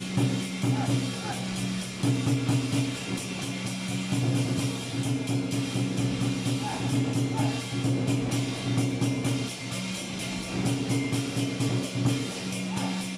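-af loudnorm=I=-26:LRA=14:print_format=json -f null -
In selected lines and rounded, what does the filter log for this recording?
"input_i" : "-28.7",
"input_tp" : "-14.2",
"input_lra" : "1.2",
"input_thresh" : "-38.7",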